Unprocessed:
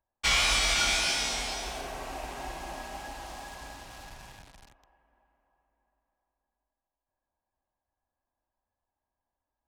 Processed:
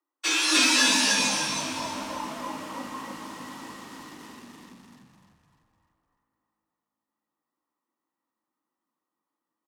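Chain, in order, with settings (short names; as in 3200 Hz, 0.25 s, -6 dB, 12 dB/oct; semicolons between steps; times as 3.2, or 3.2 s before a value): frequency shift +270 Hz; frequency-shifting echo 0.3 s, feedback 42%, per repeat -54 Hz, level -3 dB; spectral noise reduction 7 dB; gain +5.5 dB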